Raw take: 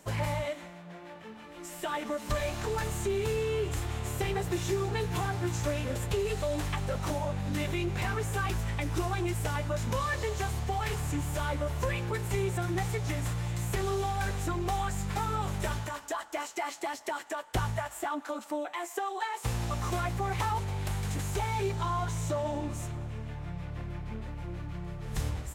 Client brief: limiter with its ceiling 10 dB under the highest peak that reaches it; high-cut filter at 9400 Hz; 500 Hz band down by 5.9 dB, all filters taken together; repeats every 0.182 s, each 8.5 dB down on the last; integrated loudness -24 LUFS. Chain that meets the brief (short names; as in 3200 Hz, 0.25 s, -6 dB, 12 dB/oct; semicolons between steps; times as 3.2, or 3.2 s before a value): LPF 9400 Hz; bell 500 Hz -8 dB; limiter -29 dBFS; feedback echo 0.182 s, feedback 38%, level -8.5 dB; gain +13 dB